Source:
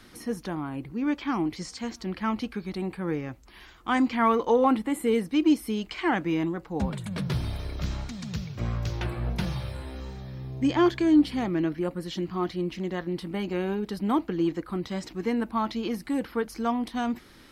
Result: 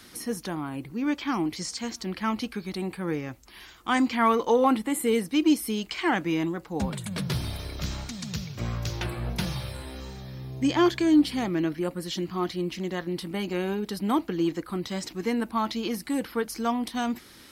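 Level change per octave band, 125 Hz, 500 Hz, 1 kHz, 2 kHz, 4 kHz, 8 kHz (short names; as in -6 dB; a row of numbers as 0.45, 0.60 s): -1.0, 0.0, +0.5, +2.0, +4.5, +8.0 dB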